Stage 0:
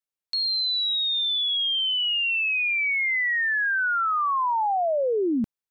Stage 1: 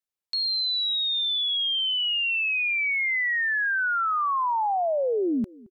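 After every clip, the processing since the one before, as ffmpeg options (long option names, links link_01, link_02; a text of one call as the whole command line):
ffmpeg -i in.wav -filter_complex "[0:a]asplit=2[link_01][link_02];[link_02]adelay=221,lowpass=frequency=850:poles=1,volume=-22.5dB,asplit=2[link_03][link_04];[link_04]adelay=221,lowpass=frequency=850:poles=1,volume=0.35[link_05];[link_01][link_03][link_05]amix=inputs=3:normalize=0,volume=-1dB" out.wav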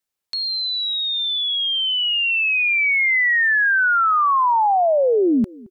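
ffmpeg -i in.wav -filter_complex "[0:a]acrossover=split=2600[link_01][link_02];[link_02]acompressor=threshold=-34dB:ratio=4:attack=1:release=60[link_03];[link_01][link_03]amix=inputs=2:normalize=0,volume=8dB" out.wav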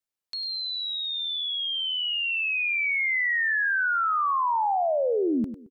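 ffmpeg -i in.wav -af "aecho=1:1:100:0.299,volume=-8dB" out.wav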